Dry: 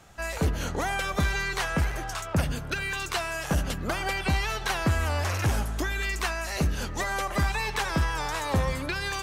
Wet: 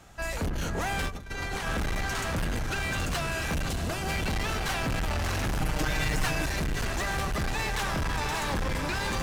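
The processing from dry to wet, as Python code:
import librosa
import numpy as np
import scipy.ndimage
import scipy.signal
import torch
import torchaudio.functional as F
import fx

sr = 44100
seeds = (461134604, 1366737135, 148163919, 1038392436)

p1 = fx.octave_divider(x, sr, octaves=1, level_db=0.0)
p2 = p1 + fx.echo_diffused(p1, sr, ms=654, feedback_pct=40, wet_db=-3.5, dry=0)
p3 = 10.0 ** (-16.5 / 20.0) * np.tanh(p2 / 10.0 ** (-16.5 / 20.0))
p4 = fx.over_compress(p3, sr, threshold_db=-31.0, ratio=-0.5, at=(1.07, 1.66), fade=0.02)
p5 = fx.peak_eq(p4, sr, hz=1700.0, db=-6.0, octaves=2.1, at=(3.69, 4.1))
p6 = np.clip(p5, -10.0 ** (-26.5 / 20.0), 10.0 ** (-26.5 / 20.0))
y = fx.comb(p6, sr, ms=6.5, depth=0.95, at=(5.6, 6.46))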